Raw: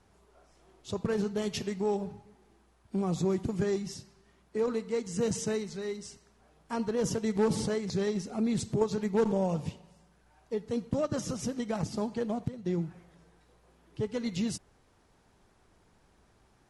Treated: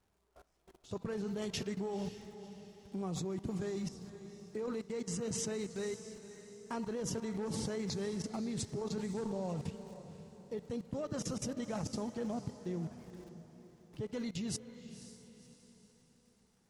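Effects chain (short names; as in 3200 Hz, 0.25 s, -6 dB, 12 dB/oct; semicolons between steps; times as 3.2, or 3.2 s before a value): crackle 230/s -54 dBFS; level quantiser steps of 20 dB; diffused feedback echo 0.52 s, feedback 43%, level -12 dB; gain +2.5 dB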